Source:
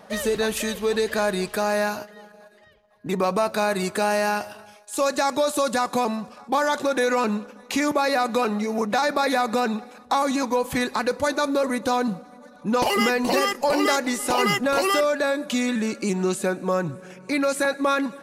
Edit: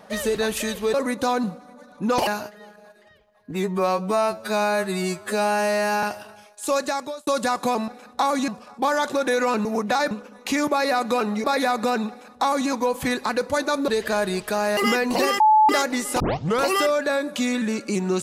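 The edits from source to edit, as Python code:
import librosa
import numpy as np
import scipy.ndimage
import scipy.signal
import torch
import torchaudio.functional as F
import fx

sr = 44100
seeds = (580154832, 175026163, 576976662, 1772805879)

y = fx.edit(x, sr, fx.swap(start_s=0.94, length_s=0.89, other_s=11.58, other_length_s=1.33),
    fx.stretch_span(start_s=3.07, length_s=1.26, factor=2.0),
    fx.fade_out_span(start_s=5.06, length_s=0.51),
    fx.move(start_s=8.68, length_s=0.46, to_s=7.35),
    fx.duplicate(start_s=9.8, length_s=0.6, to_s=6.18),
    fx.bleep(start_s=13.54, length_s=0.29, hz=863.0, db=-11.5),
    fx.tape_start(start_s=14.34, length_s=0.41), tone=tone)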